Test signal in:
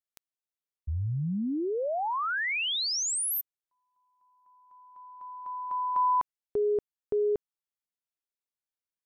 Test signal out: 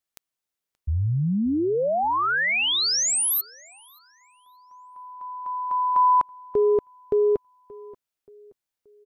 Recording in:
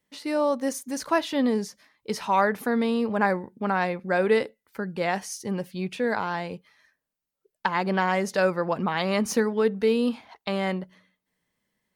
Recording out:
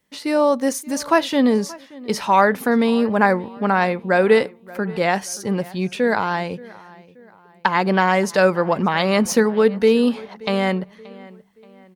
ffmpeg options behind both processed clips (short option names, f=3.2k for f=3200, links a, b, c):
-filter_complex "[0:a]asplit=2[a][b];[b]adelay=578,lowpass=f=3.6k:p=1,volume=-21dB,asplit=2[c][d];[d]adelay=578,lowpass=f=3.6k:p=1,volume=0.44,asplit=2[e][f];[f]adelay=578,lowpass=f=3.6k:p=1,volume=0.44[g];[a][c][e][g]amix=inputs=4:normalize=0,volume=7dB"